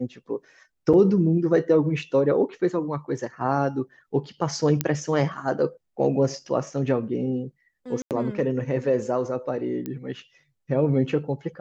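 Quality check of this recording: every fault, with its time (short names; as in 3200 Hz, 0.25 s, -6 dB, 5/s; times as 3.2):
0.93–0.94 gap 6.2 ms
4.81 pop -7 dBFS
8.02–8.11 gap 88 ms
9.86 pop -18 dBFS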